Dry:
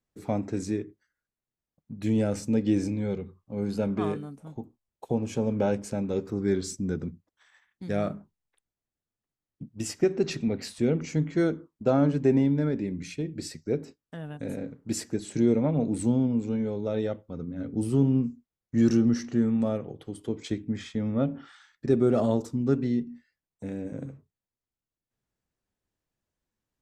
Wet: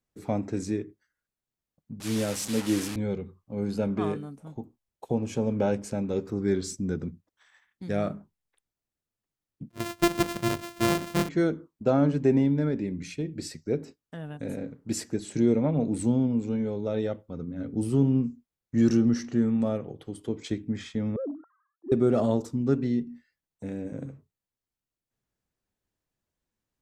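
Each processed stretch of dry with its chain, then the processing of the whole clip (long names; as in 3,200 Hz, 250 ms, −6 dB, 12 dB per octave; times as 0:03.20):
0:02.00–0:02.96: linear delta modulator 64 kbit/s, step −29.5 dBFS + spectral tilt +1.5 dB per octave + multiband upward and downward expander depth 70%
0:09.70–0:11.29: samples sorted by size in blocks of 128 samples + notch filter 790 Hz, Q 8.9
0:21.16–0:21.92: three sine waves on the formant tracks + Butterworth low-pass 1,100 Hz + transient designer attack −11 dB, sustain 0 dB
whole clip: no processing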